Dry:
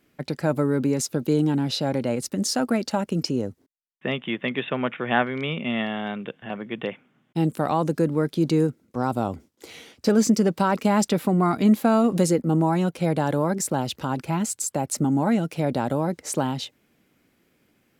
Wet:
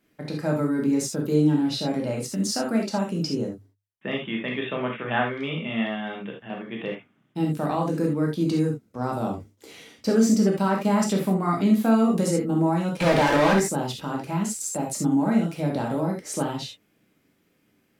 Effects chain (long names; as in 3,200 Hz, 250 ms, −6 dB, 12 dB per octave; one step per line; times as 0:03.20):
0:13.00–0:13.60: mid-hump overdrive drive 33 dB, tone 3,200 Hz, clips at −10.5 dBFS
mains-hum notches 50/100 Hz
reverb whose tail is shaped and stops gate 100 ms flat, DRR −1 dB
level −5.5 dB